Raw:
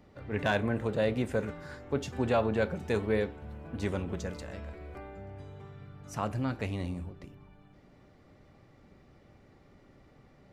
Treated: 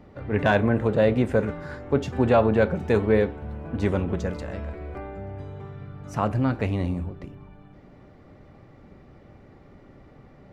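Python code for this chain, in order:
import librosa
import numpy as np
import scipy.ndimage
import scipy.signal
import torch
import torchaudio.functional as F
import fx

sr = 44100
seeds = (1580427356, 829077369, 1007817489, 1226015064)

y = fx.high_shelf(x, sr, hz=3200.0, db=-11.5)
y = y * librosa.db_to_amplitude(9.0)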